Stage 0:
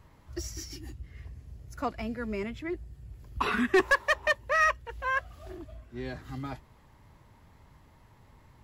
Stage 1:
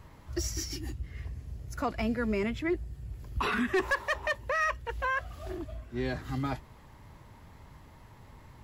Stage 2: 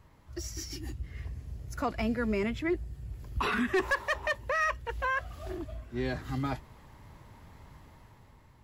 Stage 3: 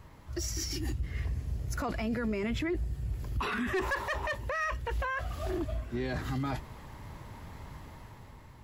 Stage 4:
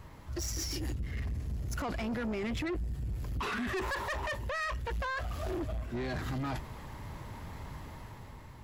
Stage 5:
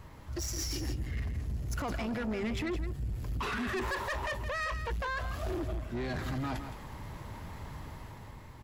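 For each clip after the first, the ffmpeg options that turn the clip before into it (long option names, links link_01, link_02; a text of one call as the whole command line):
ffmpeg -i in.wav -af "alimiter=level_in=2.5dB:limit=-24dB:level=0:latency=1:release=30,volume=-2.5dB,volume=5dB" out.wav
ffmpeg -i in.wav -af "dynaudnorm=framelen=130:gausssize=11:maxgain=7dB,volume=-7dB" out.wav
ffmpeg -i in.wav -af "alimiter=level_in=8dB:limit=-24dB:level=0:latency=1:release=15,volume=-8dB,volume=6.5dB" out.wav
ffmpeg -i in.wav -af "asoftclip=type=tanh:threshold=-33.5dB,volume=2.5dB" out.wav
ffmpeg -i in.wav -af "aecho=1:1:166:0.316" out.wav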